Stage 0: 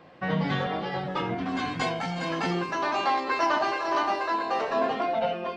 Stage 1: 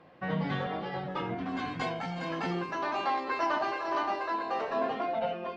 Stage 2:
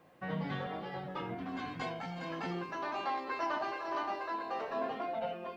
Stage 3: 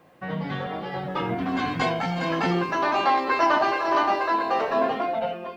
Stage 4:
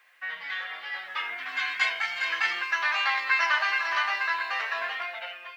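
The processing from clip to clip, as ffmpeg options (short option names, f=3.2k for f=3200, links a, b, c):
-af "lowpass=f=3.6k:p=1,volume=-4.5dB"
-af "acrusher=bits=11:mix=0:aa=0.000001,volume=-5.5dB"
-af "dynaudnorm=f=440:g=5:m=8dB,volume=6.5dB"
-af "highpass=f=1.9k:t=q:w=2.3"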